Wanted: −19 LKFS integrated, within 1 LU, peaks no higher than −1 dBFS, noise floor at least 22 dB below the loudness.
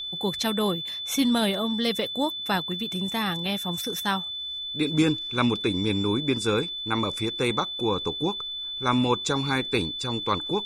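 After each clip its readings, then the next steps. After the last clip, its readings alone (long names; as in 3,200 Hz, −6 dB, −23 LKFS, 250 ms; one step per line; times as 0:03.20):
crackle rate 26 per second; interfering tone 3,500 Hz; level of the tone −31 dBFS; integrated loudness −26.0 LKFS; sample peak −9.5 dBFS; target loudness −19.0 LKFS
→ click removal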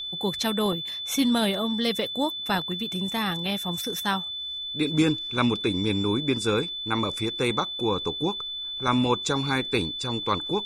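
crackle rate 0.19 per second; interfering tone 3,500 Hz; level of the tone −31 dBFS
→ notch filter 3,500 Hz, Q 30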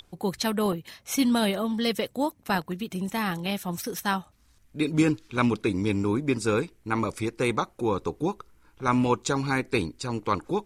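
interfering tone none found; integrated loudness −27.5 LKFS; sample peak −10.0 dBFS; target loudness −19.0 LKFS
→ level +8.5 dB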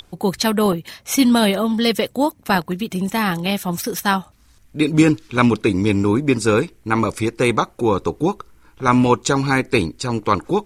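integrated loudness −19.0 LKFS; sample peak −1.5 dBFS; background noise floor −52 dBFS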